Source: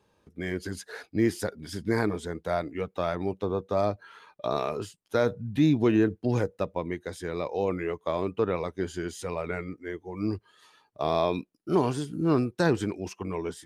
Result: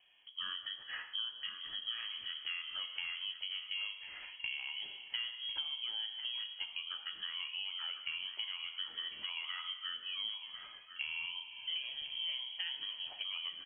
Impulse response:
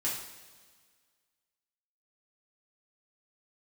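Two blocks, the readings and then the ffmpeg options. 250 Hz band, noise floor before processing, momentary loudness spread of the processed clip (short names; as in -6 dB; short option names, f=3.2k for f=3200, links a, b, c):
under -40 dB, -69 dBFS, 4 LU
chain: -filter_complex "[0:a]asplit=2[a][b];[1:a]atrim=start_sample=2205[c];[b][c]afir=irnorm=-1:irlink=0,volume=-8.5dB[d];[a][d]amix=inputs=2:normalize=0,acompressor=threshold=-35dB:ratio=12,lowpass=f=2.9k:t=q:w=0.5098,lowpass=f=2.9k:t=q:w=0.6013,lowpass=f=2.9k:t=q:w=0.9,lowpass=f=2.9k:t=q:w=2.563,afreqshift=-3400,asplit=2[e][f];[f]adelay=15,volume=-13dB[g];[e][g]amix=inputs=2:normalize=0,asplit=2[h][i];[i]adelay=1050,volume=-6dB,highshelf=f=4k:g=-23.6[j];[h][j]amix=inputs=2:normalize=0,volume=-2.5dB"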